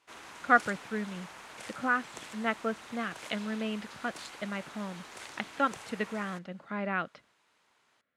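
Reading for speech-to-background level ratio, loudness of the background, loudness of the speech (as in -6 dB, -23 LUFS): 13.0 dB, -46.5 LUFS, -33.5 LUFS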